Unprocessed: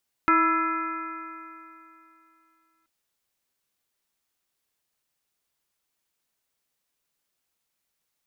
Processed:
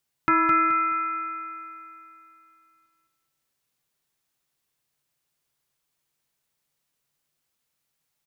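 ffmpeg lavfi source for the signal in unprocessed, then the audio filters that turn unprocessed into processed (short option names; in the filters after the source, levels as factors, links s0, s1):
-f lavfi -i "aevalsrc='0.0708*pow(10,-3*t/2.84)*sin(2*PI*322.64*t)+0.01*pow(10,-3*t/2.84)*sin(2*PI*649.13*t)+0.0501*pow(10,-3*t/2.84)*sin(2*PI*983.23*t)+0.141*pow(10,-3*t/2.84)*sin(2*PI*1328.58*t)+0.0335*pow(10,-3*t/2.84)*sin(2*PI*1688.58*t)+0.0376*pow(10,-3*t/2.84)*sin(2*PI*2066.43*t)+0.0251*pow(10,-3*t/2.84)*sin(2*PI*2465.01*t)':d=2.58:s=44100"
-filter_complex "[0:a]equalizer=f=140:w=4.6:g=12,asplit=2[s0][s1];[s1]aecho=0:1:213|426|639|852:0.531|0.17|0.0544|0.0174[s2];[s0][s2]amix=inputs=2:normalize=0"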